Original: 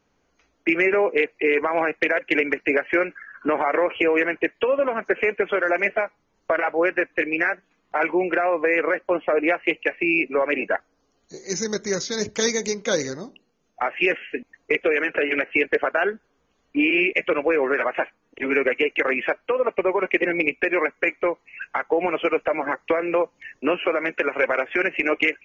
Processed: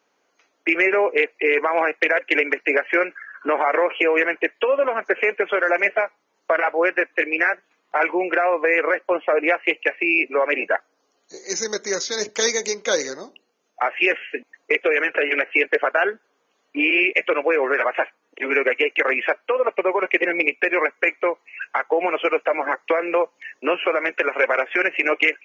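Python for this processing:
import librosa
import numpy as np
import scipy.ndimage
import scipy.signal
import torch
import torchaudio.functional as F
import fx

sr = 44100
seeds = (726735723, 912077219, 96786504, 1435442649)

y = scipy.signal.sosfilt(scipy.signal.butter(2, 410.0, 'highpass', fs=sr, output='sos'), x)
y = F.gain(torch.from_numpy(y), 3.0).numpy()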